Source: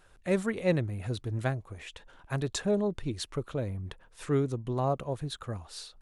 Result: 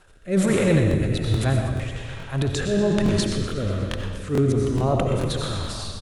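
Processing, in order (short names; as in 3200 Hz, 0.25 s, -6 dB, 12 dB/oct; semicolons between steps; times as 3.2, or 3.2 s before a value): transient shaper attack -9 dB, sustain +9 dB; digital reverb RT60 1.7 s, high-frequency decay 0.85×, pre-delay 50 ms, DRR 1 dB; rotary speaker horn 1.2 Hz; frequency-shifting echo 0.122 s, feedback 64%, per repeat -41 Hz, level -12 dB; crackling interface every 0.43 s, samples 1024, repeat, from 0.89; gain +9 dB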